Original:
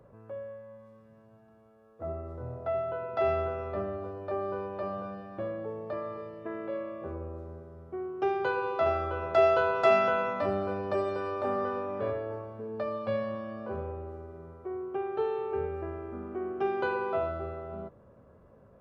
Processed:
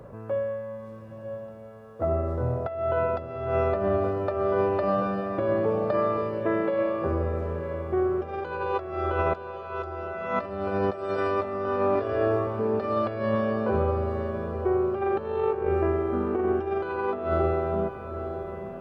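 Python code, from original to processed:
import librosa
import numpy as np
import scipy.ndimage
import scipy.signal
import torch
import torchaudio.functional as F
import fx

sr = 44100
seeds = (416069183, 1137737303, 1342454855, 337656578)

y = fx.comb(x, sr, ms=2.9, depth=0.69, at=(11.95, 12.47))
y = fx.over_compress(y, sr, threshold_db=-35.0, ratio=-0.5)
y = fx.echo_diffused(y, sr, ms=917, feedback_pct=43, wet_db=-9.5)
y = y * librosa.db_to_amplitude(8.5)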